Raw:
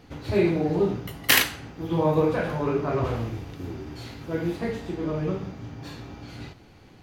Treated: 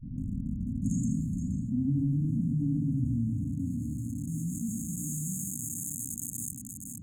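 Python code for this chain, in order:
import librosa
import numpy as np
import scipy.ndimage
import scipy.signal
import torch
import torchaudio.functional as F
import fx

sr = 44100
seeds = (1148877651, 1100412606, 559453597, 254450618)

p1 = fx.tape_start_head(x, sr, length_s=2.28)
p2 = fx.env_lowpass(p1, sr, base_hz=890.0, full_db=-18.5)
p3 = fx.quant_dither(p2, sr, seeds[0], bits=6, dither='none')
p4 = p2 + F.gain(torch.from_numpy(p3), -6.5).numpy()
p5 = fx.filter_sweep_bandpass(p4, sr, from_hz=400.0, to_hz=7300.0, start_s=2.89, end_s=5.54, q=0.71)
p6 = fx.cheby_harmonics(p5, sr, harmonics=(5,), levels_db=(-19,), full_scale_db=-6.5)
p7 = fx.brickwall_bandstop(p6, sr, low_hz=280.0, high_hz=6400.0)
p8 = p7 + 10.0 ** (-18.5 / 20.0) * np.pad(p7, (int(472 * sr / 1000.0), 0))[:len(p7)]
p9 = fx.env_flatten(p8, sr, amount_pct=70)
y = F.gain(torch.from_numpy(p9), -2.5).numpy()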